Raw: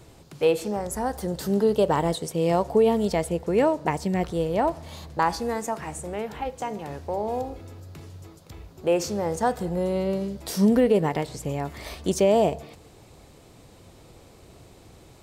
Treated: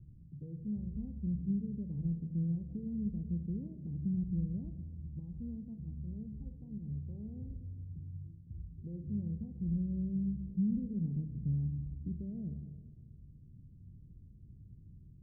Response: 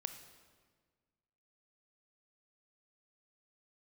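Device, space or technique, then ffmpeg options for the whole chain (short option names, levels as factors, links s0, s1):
club heard from the street: -filter_complex "[0:a]alimiter=limit=0.126:level=0:latency=1:release=155,lowpass=f=190:w=0.5412,lowpass=f=190:w=1.3066[s0];[1:a]atrim=start_sample=2205[s1];[s0][s1]afir=irnorm=-1:irlink=0,volume=1.12"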